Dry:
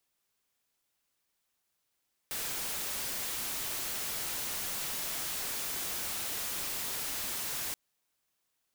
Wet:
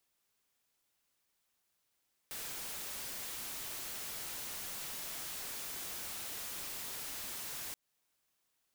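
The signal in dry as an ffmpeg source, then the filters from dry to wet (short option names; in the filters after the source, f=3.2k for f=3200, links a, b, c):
-f lavfi -i "anoisesrc=c=white:a=0.0274:d=5.43:r=44100:seed=1"
-af "alimiter=level_in=14dB:limit=-24dB:level=0:latency=1:release=230,volume=-14dB"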